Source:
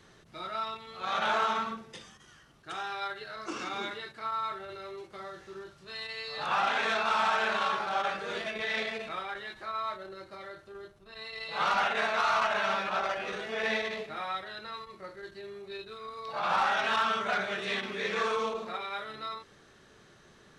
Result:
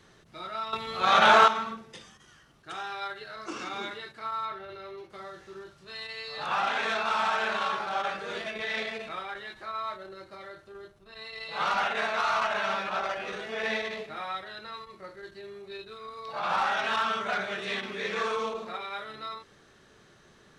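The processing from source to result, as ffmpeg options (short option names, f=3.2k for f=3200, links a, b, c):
-filter_complex "[0:a]asettb=1/sr,asplit=3[a][b][c];[a]atrim=end=4.454[d];[b]atrim=start=4.45:end=5.1,asetpts=PTS-STARTPTS,afade=t=in:d=0.004:c=qsin,afade=t=out:st=0.646:d=0.004:c=qsin,equalizer=f=8.1k:w=1.6:g=-12[e];[c]atrim=start=5.096[f];[d][e]acrossfade=d=0.004:c1=hsin:c2=qsin[g];[g][f]acrossfade=d=0.004:c1=qsin:c2=hsin,asplit=3[h][i][j];[h]atrim=end=0.732[k];[i]atrim=start=0.728:end=1.482,asetpts=PTS-STARTPTS,volume=10.5dB[l];[j]atrim=start=1.478[m];[k][l]acrossfade=d=0.004:c1=hsin:c2=hsin[n];[n][m]acrossfade=d=0.004:c1=hsin:c2=hsin"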